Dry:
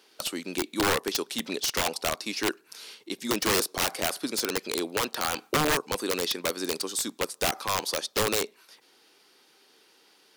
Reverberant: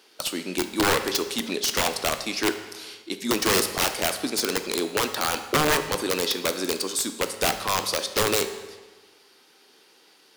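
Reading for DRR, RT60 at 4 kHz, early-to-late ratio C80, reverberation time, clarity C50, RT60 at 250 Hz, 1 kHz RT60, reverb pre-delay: 8.0 dB, 1.2 s, 12.0 dB, 1.3 s, 10.0 dB, 1.3 s, 1.3 s, 10 ms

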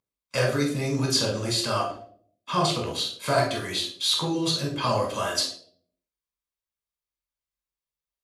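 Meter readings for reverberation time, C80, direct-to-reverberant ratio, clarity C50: 0.55 s, 10.5 dB, -0.5 dB, 6.5 dB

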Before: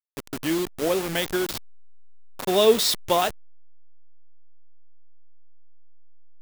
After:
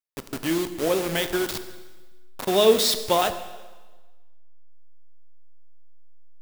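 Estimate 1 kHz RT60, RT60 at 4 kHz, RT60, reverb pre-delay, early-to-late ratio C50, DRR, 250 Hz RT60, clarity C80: 1.3 s, 1.3 s, 1.3 s, 19 ms, 11.5 dB, 10.0 dB, 1.3 s, 13.0 dB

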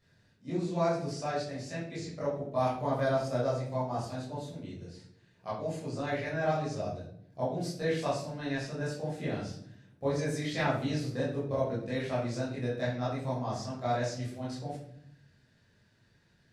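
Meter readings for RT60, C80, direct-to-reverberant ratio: 0.70 s, 7.5 dB, -9.0 dB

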